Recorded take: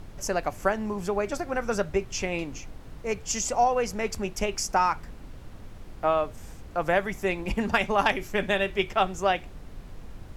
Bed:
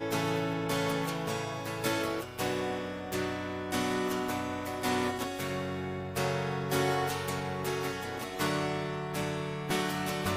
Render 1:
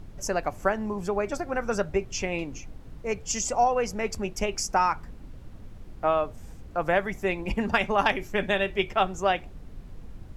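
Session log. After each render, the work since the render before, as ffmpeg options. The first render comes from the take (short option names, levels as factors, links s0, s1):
-af "afftdn=nr=6:nf=-45"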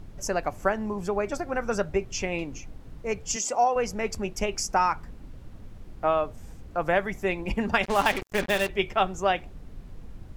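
-filter_complex "[0:a]asettb=1/sr,asplit=3[s0][s1][s2];[s0]atrim=end=3.364[s3];[s1]atrim=start=3.36:end=3.76,asetpts=PTS-STARTPTS,afade=t=in:d=0.004:c=qsin,afade=t=out:st=0.396:d=0.004:c=qsin,highpass=270[s4];[s2]atrim=start=3.756[s5];[s3][s4]acrossfade=d=0.004:c1=hsin:c2=qsin[s6];[s6][s5]acrossfade=d=0.004:c1=qsin:c2=hsin,asettb=1/sr,asplit=3[s7][s8][s9];[s7]atrim=end=7.834[s10];[s8]atrim=start=7.83:end=8.69,asetpts=PTS-STARTPTS,afade=t=in:d=0.004:c=qsin,afade=t=out:st=0.856:d=0.004:c=qsin,acrusher=bits=4:mix=0:aa=0.5[s11];[s9]atrim=start=8.686[s12];[s10][s11]acrossfade=d=0.004:c1=hsin:c2=qsin[s13];[s13][s12]acrossfade=d=0.004:c1=qsin:c2=hsin"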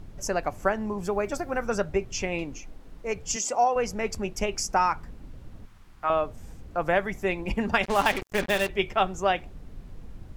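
-filter_complex "[0:a]asettb=1/sr,asplit=3[s0][s1][s2];[s0]atrim=end=1.034[s3];[s1]atrim=start=1.03:end=1.67,asetpts=PTS-STARTPTS,afade=t=in:d=0.004:c=qsin,afade=t=out:st=0.636:d=0.004:c=qsin,highshelf=f=12000:g=11[s4];[s2]atrim=start=1.666[s5];[s3][s4]acrossfade=d=0.004:c1=hsin:c2=qsin[s6];[s6][s5]acrossfade=d=0.004:c1=qsin:c2=hsin,asettb=1/sr,asplit=3[s7][s8][s9];[s7]atrim=end=2.534[s10];[s8]atrim=start=2.53:end=3.16,asetpts=PTS-STARTPTS,afade=t=in:d=0.004:c=qsin,afade=t=out:st=0.626:d=0.004:c=qsin,equalizer=f=100:w=1.1:g=-13[s11];[s9]atrim=start=3.156[s12];[s10][s11]acrossfade=d=0.004:c1=hsin:c2=qsin[s13];[s13][s12]acrossfade=d=0.004:c1=qsin:c2=hsin,asettb=1/sr,asplit=3[s14][s15][s16];[s14]atrim=end=5.654[s17];[s15]atrim=start=5.65:end=6.1,asetpts=PTS-STARTPTS,afade=t=in:d=0.004:c=qsin,afade=t=out:st=0.446:d=0.004:c=qsin,lowshelf=f=770:t=q:w=1.5:g=-9.5[s18];[s16]atrim=start=6.096[s19];[s17][s18]acrossfade=d=0.004:c1=hsin:c2=qsin[s20];[s20][s19]acrossfade=d=0.004:c1=qsin:c2=hsin"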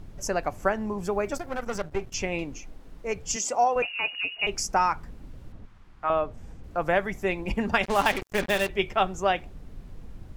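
-filter_complex "[0:a]asettb=1/sr,asplit=3[s0][s1][s2];[s0]atrim=end=1.354[s3];[s1]atrim=start=1.35:end=2.14,asetpts=PTS-STARTPTS,afade=t=in:d=0.004:c=qsin,afade=t=out:st=0.786:d=0.004:c=qsin,aeval=exprs='if(lt(val(0),0),0.251*val(0),val(0))':c=same[s4];[s2]atrim=start=2.136[s5];[s3][s4]acrossfade=d=0.004:c1=hsin:c2=qsin[s6];[s6][s5]acrossfade=d=0.004:c1=qsin:c2=hsin,asettb=1/sr,asplit=3[s7][s8][s9];[s7]atrim=end=3.824[s10];[s8]atrim=start=3.82:end=4.47,asetpts=PTS-STARTPTS,afade=t=in:d=0.004:c=qsin,afade=t=out:st=0.646:d=0.004:c=qsin,lowpass=f=2500:t=q:w=0.5098,lowpass=f=2500:t=q:w=0.6013,lowpass=f=2500:t=q:w=0.9,lowpass=f=2500:t=q:w=2.563,afreqshift=-2900[s11];[s9]atrim=start=4.466[s12];[s10][s11]acrossfade=d=0.004:c1=hsin:c2=qsin[s13];[s13][s12]acrossfade=d=0.004:c1=qsin:c2=hsin,asettb=1/sr,asplit=3[s14][s15][s16];[s14]atrim=end=5.524[s17];[s15]atrim=start=5.52:end=6.64,asetpts=PTS-STARTPTS,afade=t=in:d=0.004:c=qsin,afade=t=out:st=1.116:d=0.004:c=qsin,aemphasis=mode=reproduction:type=50kf[s18];[s16]atrim=start=6.636[s19];[s17][s18]acrossfade=d=0.004:c1=hsin:c2=qsin[s20];[s20][s19]acrossfade=d=0.004:c1=qsin:c2=hsin"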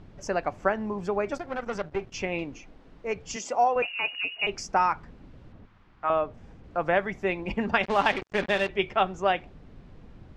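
-af "lowpass=4100,lowshelf=f=66:g=-11"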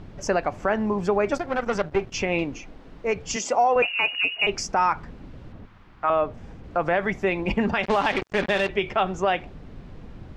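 -af "alimiter=limit=0.119:level=0:latency=1:release=60,acontrast=83"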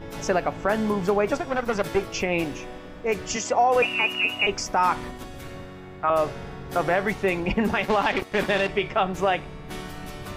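-filter_complex "[1:a]volume=0.501[s0];[0:a][s0]amix=inputs=2:normalize=0"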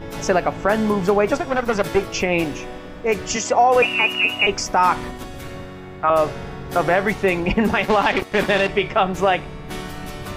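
-af "volume=1.78"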